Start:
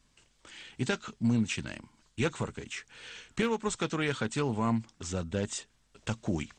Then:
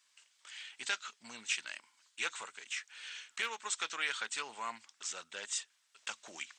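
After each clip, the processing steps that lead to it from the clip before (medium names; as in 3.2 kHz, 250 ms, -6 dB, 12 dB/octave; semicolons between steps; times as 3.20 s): high-pass 1.4 kHz 12 dB/octave; trim +1 dB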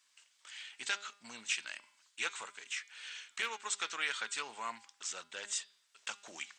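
de-hum 202 Hz, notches 25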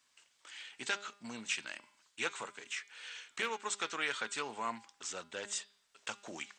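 tilt shelf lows +7 dB, about 720 Hz; trim +5 dB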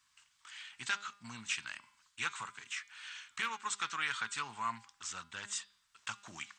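FFT filter 110 Hz 0 dB, 510 Hz -25 dB, 1.1 kHz -4 dB, 2.1 kHz -8 dB; trim +7.5 dB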